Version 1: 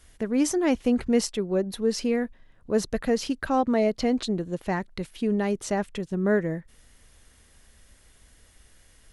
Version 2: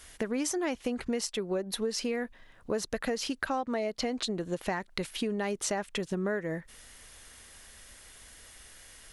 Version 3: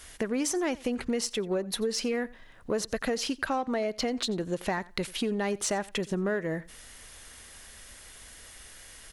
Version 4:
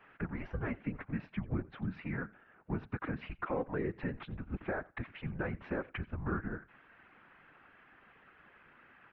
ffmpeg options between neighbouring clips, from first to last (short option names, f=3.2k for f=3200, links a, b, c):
-af "lowshelf=f=400:g=-11,acompressor=threshold=-36dB:ratio=12,volume=8dB"
-filter_complex "[0:a]asplit=2[a][b];[b]asoftclip=type=tanh:threshold=-30.5dB,volume=-7dB[c];[a][c]amix=inputs=2:normalize=0,aecho=1:1:89|178:0.0841|0.0126"
-af "highpass=f=340:t=q:w=0.5412,highpass=f=340:t=q:w=1.307,lowpass=f=2.6k:t=q:w=0.5176,lowpass=f=2.6k:t=q:w=0.7071,lowpass=f=2.6k:t=q:w=1.932,afreqshift=-280,afftfilt=real='hypot(re,im)*cos(2*PI*random(0))':imag='hypot(re,im)*sin(2*PI*random(1))':win_size=512:overlap=0.75,volume=1dB"